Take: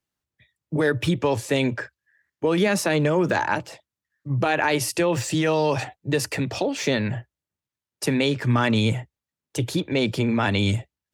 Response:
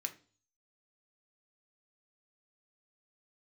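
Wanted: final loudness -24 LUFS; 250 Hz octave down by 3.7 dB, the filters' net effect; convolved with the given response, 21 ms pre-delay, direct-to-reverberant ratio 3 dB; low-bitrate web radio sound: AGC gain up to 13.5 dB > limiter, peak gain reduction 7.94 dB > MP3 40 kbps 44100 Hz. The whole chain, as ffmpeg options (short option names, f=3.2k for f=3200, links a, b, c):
-filter_complex "[0:a]equalizer=f=250:t=o:g=-5,asplit=2[a][b];[1:a]atrim=start_sample=2205,adelay=21[c];[b][c]afir=irnorm=-1:irlink=0,volume=-2.5dB[d];[a][d]amix=inputs=2:normalize=0,dynaudnorm=m=13.5dB,alimiter=limit=-15.5dB:level=0:latency=1,volume=2.5dB" -ar 44100 -c:a libmp3lame -b:a 40k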